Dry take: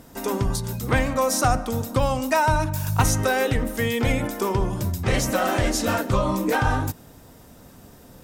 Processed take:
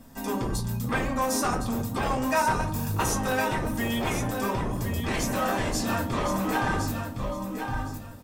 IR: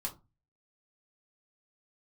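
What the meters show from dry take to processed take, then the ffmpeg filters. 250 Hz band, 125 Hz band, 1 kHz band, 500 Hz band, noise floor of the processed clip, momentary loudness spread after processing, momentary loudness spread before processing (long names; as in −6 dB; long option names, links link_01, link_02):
−2.5 dB, −6.0 dB, −3.0 dB, −6.0 dB, −39 dBFS, 7 LU, 6 LU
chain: -filter_complex "[0:a]bandreject=frequency=890:width=18,aecho=1:1:1062|2124|3186:0.422|0.097|0.0223[link_01];[1:a]atrim=start_sample=2205[link_02];[link_01][link_02]afir=irnorm=-1:irlink=0,acrossover=split=810|2700[link_03][link_04][link_05];[link_03]aeval=exprs='0.106*(abs(mod(val(0)/0.106+3,4)-2)-1)':channel_layout=same[link_06];[link_06][link_04][link_05]amix=inputs=3:normalize=0,volume=-4dB"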